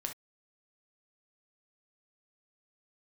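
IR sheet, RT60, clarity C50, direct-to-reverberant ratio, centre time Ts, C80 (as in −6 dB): non-exponential decay, 9.0 dB, 3.0 dB, 13 ms, 40.5 dB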